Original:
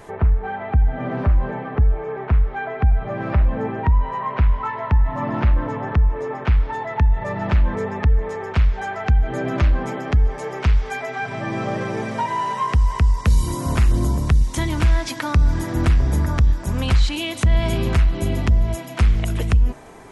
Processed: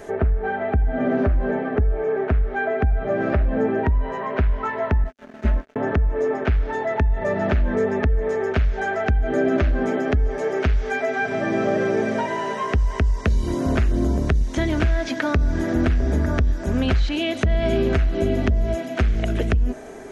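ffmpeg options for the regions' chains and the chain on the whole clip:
ffmpeg -i in.wav -filter_complex "[0:a]asettb=1/sr,asplit=3[link_01][link_02][link_03];[link_01]atrim=end=5.044[link_04];[link_02]atrim=start=5.04:end=5.76,asetpts=PTS-STARTPTS,afade=type=in:duration=0.004:curve=qsin,afade=type=out:start_time=0.716:duration=0.004:curve=qsin,agate=range=-33dB:threshold=-13dB:ratio=3:release=100:detection=peak,aecho=1:1:4.7:0.93,atrim=end_sample=31752,aeval=exprs='sgn(val(0))*max(abs(val(0))-0.0119,0)':channel_layout=same[link_05];[link_03]atrim=start=5.756[link_06];[link_04][link_05]acrossfade=duration=0.004:curve1=hsin:curve2=qsin[link_07];[link_07][link_06]acrossfade=duration=0.004:curve1=qsin:curve2=hsin,acrossover=split=4500[link_08][link_09];[link_09]acompressor=threshold=-53dB:ratio=4:attack=1:release=60[link_10];[link_08][link_10]amix=inputs=2:normalize=0,equalizer=frequency=125:width_type=o:width=0.33:gain=-9,equalizer=frequency=250:width_type=o:width=0.33:gain=8,equalizer=frequency=400:width_type=o:width=0.33:gain=9,equalizer=frequency=630:width_type=o:width=0.33:gain=8,equalizer=frequency=1000:width_type=o:width=0.33:gain=-7,equalizer=frequency=1600:width_type=o:width=0.33:gain=5,equalizer=frequency=6300:width_type=o:width=0.33:gain=6,acompressor=threshold=-15dB:ratio=6" out.wav

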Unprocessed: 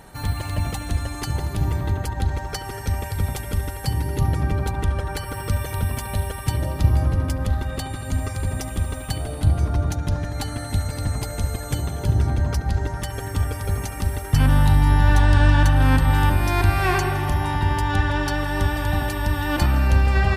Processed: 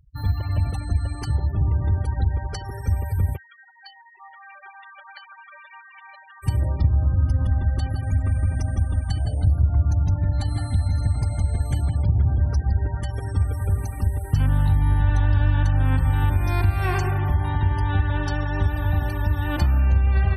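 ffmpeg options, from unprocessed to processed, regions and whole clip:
ffmpeg -i in.wav -filter_complex "[0:a]asettb=1/sr,asplit=3[link_01][link_02][link_03];[link_01]atrim=end=3.364[link_04];[link_02]atrim=start=3.36:end=6.43,asetpts=PTS-STARTPTS,afade=type=in:duration=0.004:curve=qsin,afade=type=out:start_time=3.066:duration=0.004:curve=qsin,acrossover=split=4200[link_05][link_06];[link_06]acompressor=threshold=-47dB:ratio=4:attack=1:release=60[link_07];[link_05][link_07]amix=inputs=2:normalize=0,highpass=1200,aecho=1:1:951:0.112,atrim=end_sample=135387[link_08];[link_03]atrim=start=6.426[link_09];[link_04][link_08]acrossfade=duration=0.004:curve1=hsin:curve2=qsin[link_10];[link_10][link_09]acrossfade=duration=0.004:curve1=qsin:curve2=hsin,asettb=1/sr,asplit=3[link_11][link_12][link_13];[link_11]atrim=end=7.054[link_14];[link_12]atrim=start=7.05:end=12.31,asetpts=PTS-STARTPTS,afade=type=in:duration=0.004:curve=qsin,afade=type=out:start_time=5.256:duration=0.004:curve=qsin,equalizer=frequency=440:width=2.8:gain=-5.5,aecho=1:1:163:0.562,atrim=end_sample=231966[link_15];[link_13]atrim=start=12.306[link_16];[link_14][link_15]acrossfade=duration=0.004:curve1=hsin:curve2=qsin[link_17];[link_17][link_16]acrossfade=duration=0.004:curve1=qsin:curve2=hsin,afftfilt=real='re*gte(hypot(re,im),0.0355)':imag='im*gte(hypot(re,im),0.0355)':win_size=1024:overlap=0.75,equalizer=frequency=79:width_type=o:width=1.3:gain=10,acompressor=threshold=-13dB:ratio=2.5,volume=-4dB" out.wav

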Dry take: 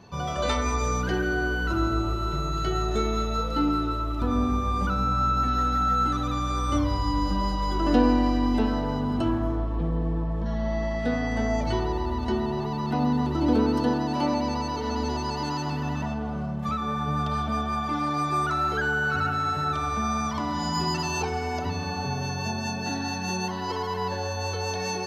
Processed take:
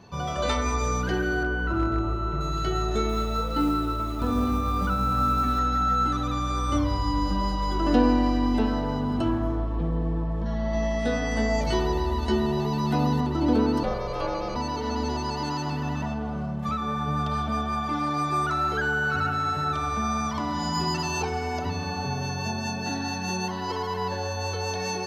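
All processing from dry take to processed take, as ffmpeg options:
ffmpeg -i in.wav -filter_complex "[0:a]asettb=1/sr,asplit=3[link_01][link_02][link_03];[link_01]atrim=end=1.434[link_04];[link_02]atrim=start=1.43:end=2.41,asetpts=PTS-STARTPTS,afade=type=in:duration=0.004:curve=qsin,afade=type=out:start_time=0.976:duration=0.004:curve=qsin,acrossover=split=2700[link_05][link_06];[link_06]acompressor=threshold=-59dB:ratio=4:attack=1:release=60[link_07];[link_05][link_07]amix=inputs=2:normalize=0,asoftclip=type=hard:threshold=-16.5dB[link_08];[link_03]atrim=start=2.406[link_09];[link_04][link_08]acrossfade=duration=0.004:curve1=hsin:curve2=qsin[link_10];[link_10][link_09]acrossfade=duration=0.004:curve1=qsin:curve2=hsin,asettb=1/sr,asplit=3[link_11][link_12][link_13];[link_11]atrim=end=3.094[link_14];[link_12]atrim=start=3.09:end=5.59,asetpts=PTS-STARTPTS,afade=type=in:duration=0.004:curve=qsin,afade=type=out:start_time=2.496:duration=0.004:curve=qsin,lowpass=6500,acrusher=bits=7:mode=log:mix=0:aa=0.000001,aecho=1:1:905:0.282,atrim=end_sample=110250[link_15];[link_13]atrim=start=5.586[link_16];[link_14][link_15]acrossfade=duration=0.004:curve1=hsin:curve2=qsin[link_17];[link_17][link_16]acrossfade=duration=0.004:curve1=qsin:curve2=hsin,asettb=1/sr,asplit=3[link_18][link_19][link_20];[link_18]atrim=end=10.734[link_21];[link_19]atrim=start=10.73:end=13.21,asetpts=PTS-STARTPTS,afade=type=in:duration=0.004:curve=qsin,afade=type=out:start_time=2.476:duration=0.004:curve=qsin,highshelf=frequency=5100:gain=10,asplit=2[link_22][link_23];[link_23]adelay=14,volume=-5dB[link_24];[link_22][link_24]amix=inputs=2:normalize=0,atrim=end_sample=109368[link_25];[link_20]atrim=start=13.206[link_26];[link_21][link_25]acrossfade=duration=0.004:curve1=hsin:curve2=qsin[link_27];[link_27][link_26]acrossfade=duration=0.004:curve1=qsin:curve2=hsin,asettb=1/sr,asplit=3[link_28][link_29][link_30];[link_28]atrim=end=13.834[link_31];[link_29]atrim=start=13.83:end=14.56,asetpts=PTS-STARTPTS,afade=type=in:duration=0.004:curve=qsin,afade=type=out:start_time=0.726:duration=0.004:curve=qsin,acrossover=split=4200[link_32][link_33];[link_33]acompressor=threshold=-47dB:ratio=4:attack=1:release=60[link_34];[link_32][link_34]amix=inputs=2:normalize=0,aeval=exprs='val(0)*sin(2*PI*270*n/s)':channel_layout=same,aeval=exprs='val(0)+0.00251*sin(2*PI*2300*n/s)':channel_layout=same[link_35];[link_30]atrim=start=14.556[link_36];[link_31][link_35]acrossfade=duration=0.004:curve1=hsin:curve2=qsin[link_37];[link_37][link_36]acrossfade=duration=0.004:curve1=qsin:curve2=hsin" out.wav

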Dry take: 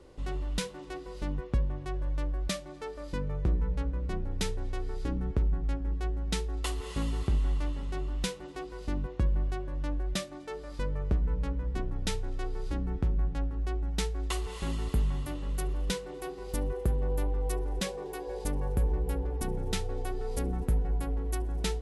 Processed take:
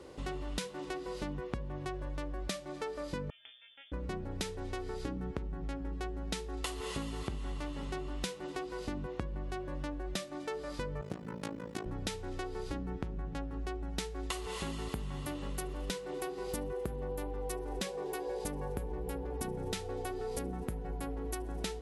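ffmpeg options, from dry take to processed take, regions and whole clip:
ffmpeg -i in.wav -filter_complex "[0:a]asettb=1/sr,asplit=3[link_01][link_02][link_03];[link_01]atrim=end=3.304[link_04];[link_02]atrim=start=3.3:end=3.92,asetpts=PTS-STARTPTS,afade=type=in:duration=0.004:curve=qsin,afade=type=out:start_time=0.616:duration=0.004:curve=qsin,aderivative,bandreject=frequency=2500:width=5.7,lowpass=frequency=3100:width_type=q:width=0.5098,lowpass=frequency=3100:width_type=q:width=0.6013,lowpass=frequency=3100:width_type=q:width=0.9,lowpass=frequency=3100:width_type=q:width=2.563,afreqshift=-3600[link_05];[link_03]atrim=start=3.916[link_06];[link_04][link_05]acrossfade=duration=0.004:curve1=hsin:curve2=qsin[link_07];[link_07][link_06]acrossfade=duration=0.004:curve1=qsin:curve2=hsin,asettb=1/sr,asplit=3[link_08][link_09][link_10];[link_08]atrim=end=11.014[link_11];[link_09]atrim=start=11.01:end=11.86,asetpts=PTS-STARTPTS,afade=type=in:duration=0.004:curve=qsin,afade=type=out:start_time=0.846:duration=0.004:curve=qsin,highpass=frequency=110:width=0.5412,highpass=frequency=110:width=1.3066,highshelf=frequency=4300:gain=11,tremolo=f=54:d=0.919[link_12];[link_10]atrim=start=11.856[link_13];[link_11][link_12]acrossfade=duration=0.004:curve1=hsin:curve2=qsin[link_14];[link_14][link_13]acrossfade=duration=0.004:curve1=qsin:curve2=hsin,highpass=frequency=160:poles=1,acompressor=threshold=-40dB:ratio=6,volume=5.5dB" out.wav

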